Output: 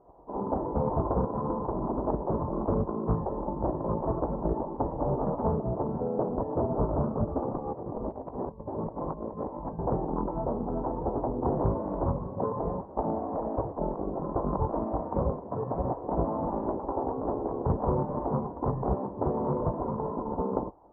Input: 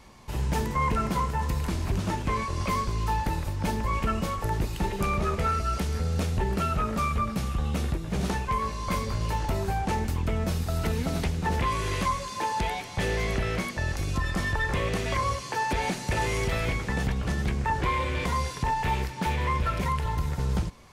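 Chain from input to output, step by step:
high-pass filter 85 Hz 12 dB per octave
gate on every frequency bin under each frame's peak −10 dB weak
Chebyshev low-pass filter 1,000 Hz, order 5
low-shelf EQ 230 Hz +3.5 dB
0:07.42–0:09.79: compressor whose output falls as the input rises −43 dBFS, ratio −0.5
highs frequency-modulated by the lows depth 0.32 ms
level +8.5 dB

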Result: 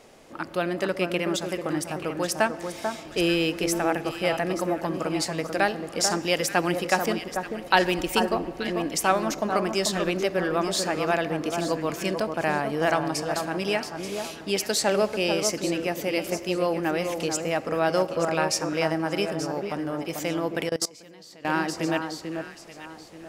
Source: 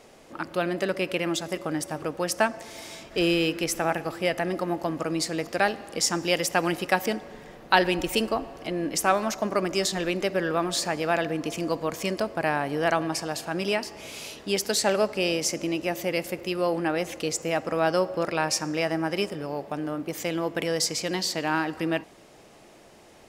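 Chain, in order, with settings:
delay that swaps between a low-pass and a high-pass 441 ms, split 1,500 Hz, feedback 51%, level −5.5 dB
0:20.69–0:21.45: output level in coarse steps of 24 dB

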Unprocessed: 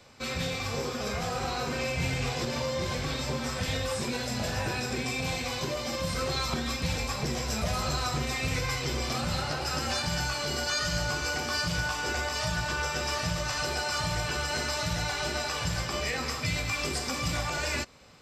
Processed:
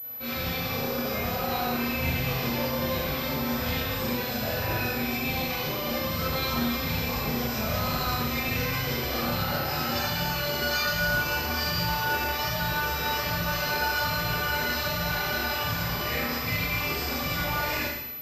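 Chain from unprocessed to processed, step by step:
four-comb reverb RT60 0.99 s, combs from 26 ms, DRR −8.5 dB
switching amplifier with a slow clock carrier 12,000 Hz
level −6 dB

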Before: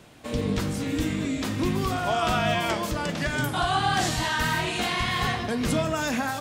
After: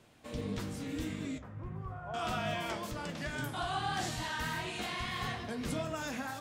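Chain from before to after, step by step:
0:01.38–0:02.14: drawn EQ curve 150 Hz 0 dB, 250 Hz −17 dB, 520 Hz −6 dB, 1,400 Hz −6 dB, 4,000 Hz −30 dB
flanger 1.7 Hz, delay 7.5 ms, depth 8 ms, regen −59%
level −7 dB

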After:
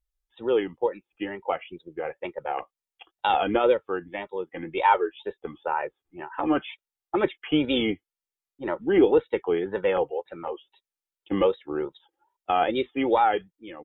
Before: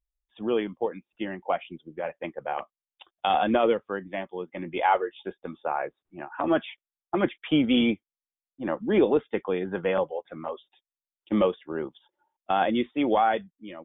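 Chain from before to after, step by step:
comb filter 2.3 ms, depth 56%
tape wow and flutter 130 cents

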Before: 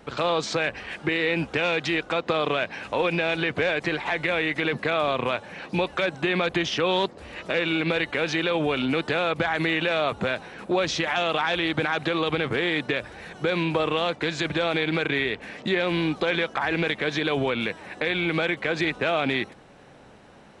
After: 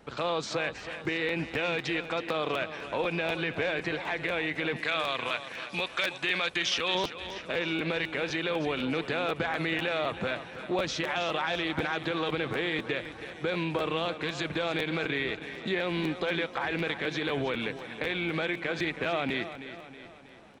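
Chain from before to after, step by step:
0:04.76–0:06.95: tilt shelving filter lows −8 dB, about 1,100 Hz
repeating echo 321 ms, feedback 51%, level −12 dB
regular buffer underruns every 0.25 s, samples 512, repeat, from 0:00.78
level −6 dB

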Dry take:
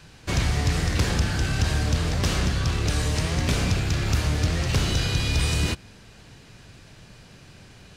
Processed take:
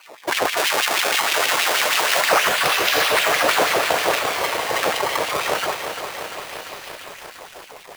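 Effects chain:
0:04.19–0:04.83: inverse Chebyshev band-stop filter 460–960 Hz, stop band 80 dB
0:04.95–0:05.93: healed spectral selection 200–4,100 Hz after
sample-and-hold swept by an LFO 25×, swing 160% 0.26 Hz
0:00.57–0:02.21: tilt shelving filter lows −7.5 dB, about 790 Hz
auto-filter high-pass sine 6.3 Hz 490–2,900 Hz
boost into a limiter +13.5 dB
feedback echo at a low word length 345 ms, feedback 80%, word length 6 bits, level −8 dB
level −3 dB

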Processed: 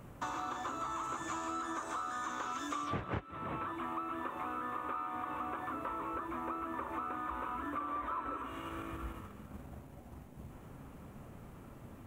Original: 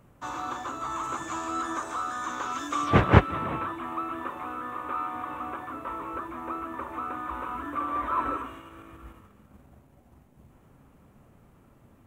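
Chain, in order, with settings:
downward compressor 8 to 1, threshold −42 dBFS, peak gain reduction 30.5 dB
level +5.5 dB

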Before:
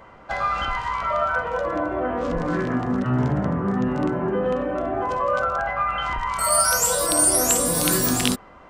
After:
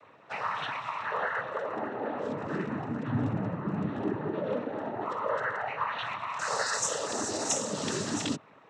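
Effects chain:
cochlear-implant simulation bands 12
level −8.5 dB

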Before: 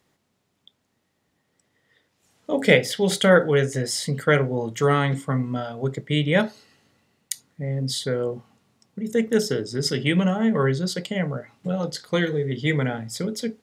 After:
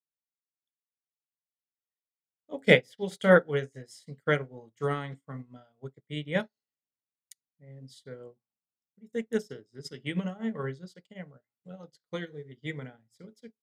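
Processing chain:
expander for the loud parts 2.5 to 1, over −40 dBFS
level −1.5 dB

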